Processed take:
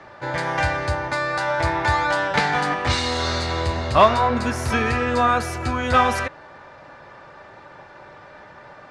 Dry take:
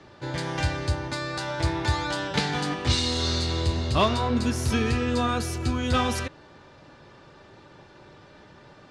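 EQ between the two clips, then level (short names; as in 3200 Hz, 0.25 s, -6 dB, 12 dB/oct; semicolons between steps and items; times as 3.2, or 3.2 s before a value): band shelf 1100 Hz +10 dB 2.4 oct; 0.0 dB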